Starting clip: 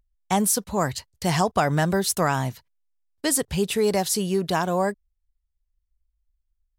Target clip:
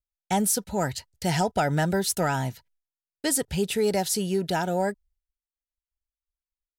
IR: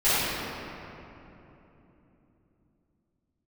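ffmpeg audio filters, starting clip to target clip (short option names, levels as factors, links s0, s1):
-af "agate=range=0.0224:threshold=0.00158:ratio=3:detection=peak,acontrast=24,asuperstop=centerf=1100:order=12:qfactor=4.7,volume=0.447"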